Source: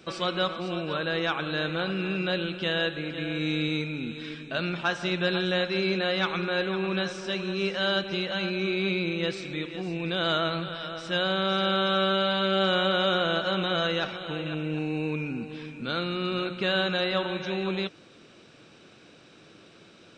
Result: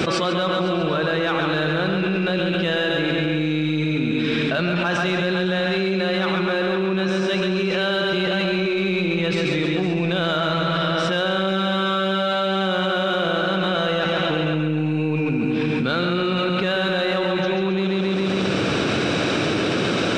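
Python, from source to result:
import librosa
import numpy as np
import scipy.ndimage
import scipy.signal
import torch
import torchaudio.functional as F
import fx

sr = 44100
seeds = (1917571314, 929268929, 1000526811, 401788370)

p1 = scipy.signal.sosfilt(scipy.signal.butter(2, 56.0, 'highpass', fs=sr, output='sos'), x)
p2 = fx.high_shelf(p1, sr, hz=3600.0, db=-7.5)
p3 = 10.0 ** (-32.5 / 20.0) * np.tanh(p2 / 10.0 ** (-32.5 / 20.0))
p4 = p2 + (p3 * librosa.db_to_amplitude(-10.0))
p5 = fx.echo_feedback(p4, sr, ms=136, feedback_pct=52, wet_db=-5.0)
y = fx.env_flatten(p5, sr, amount_pct=100)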